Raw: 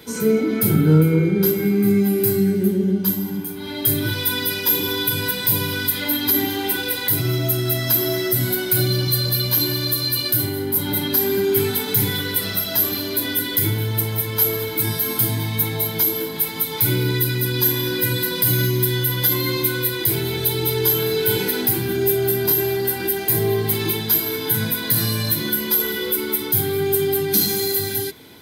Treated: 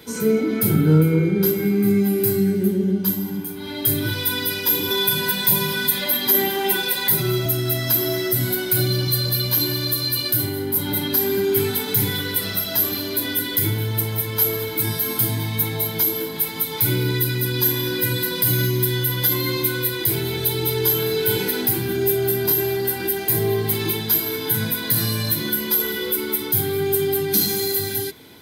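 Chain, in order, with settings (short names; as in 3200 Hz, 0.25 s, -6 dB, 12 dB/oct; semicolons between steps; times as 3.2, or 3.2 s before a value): 4.9–7.46 comb 5.2 ms, depth 86%; gain -1 dB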